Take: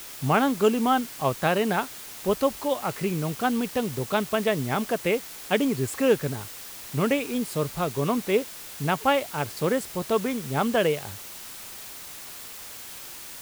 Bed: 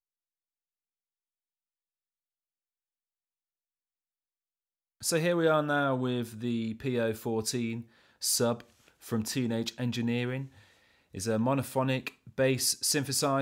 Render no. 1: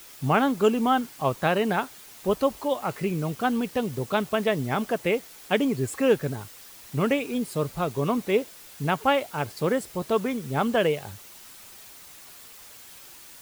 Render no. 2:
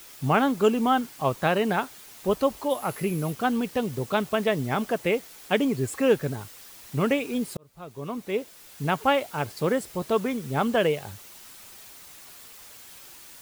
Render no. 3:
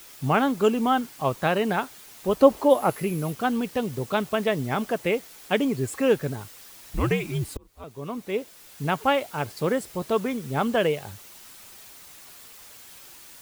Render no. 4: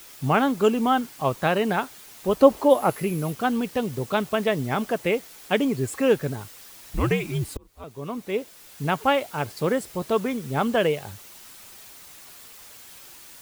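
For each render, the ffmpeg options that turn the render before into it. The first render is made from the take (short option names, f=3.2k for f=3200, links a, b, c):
-af "afftdn=nr=7:nf=-41"
-filter_complex "[0:a]asettb=1/sr,asplit=3[a][b][c];[a]atrim=end=2.704[d];[b]atrim=start=2.7:end=3.33,asetpts=PTS-STARTPTS,afade=t=in:d=0.004:c=qsin,afade=t=out:st=0.626:d=0.004:c=qsin,equalizer=f=11k:w=3.9:g=14[e];[c]atrim=start=3.326[f];[d][e]acrossfade=d=0.004:c1=hsin:c2=qsin[g];[g][f]acrossfade=d=0.004:c1=qsin:c2=hsin,asplit=2[h][i];[h]atrim=end=7.57,asetpts=PTS-STARTPTS,afade=t=out:st=7.566:d=0.004:c=hsin[j];[i]atrim=start=7.57,asetpts=PTS-STARTPTS,afade=t=in:d=1.38[k];[j][k]concat=n=2:v=0:a=1"
-filter_complex "[0:a]asettb=1/sr,asplit=3[a][b][c];[a]atrim=end=2.404[d];[b]atrim=start=2.4:end=2.9,asetpts=PTS-STARTPTS,afade=t=in:d=0.004:c=qsin,afade=t=out:st=0.496:d=0.004:c=qsin,equalizer=f=420:w=0.41:g=9[e];[c]atrim=start=2.896[f];[d][e]acrossfade=d=0.004:c1=hsin:c2=qsin[g];[g][f]acrossfade=d=0.004:c1=qsin:c2=hsin,asettb=1/sr,asplit=3[h][i][j];[h]atrim=end=6.824[k];[i]atrim=start=6.82:end=7.84,asetpts=PTS-STARTPTS,afade=t=in:d=0.004:c=qsin,afade=t=out:st=1.016:d=0.004:c=qsin,afreqshift=-100[l];[j]atrim=start=7.836[m];[k][l]acrossfade=d=0.004:c1=hsin:c2=qsin[n];[n][m]acrossfade=d=0.004:c1=qsin:c2=hsin"
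-af "volume=1dB"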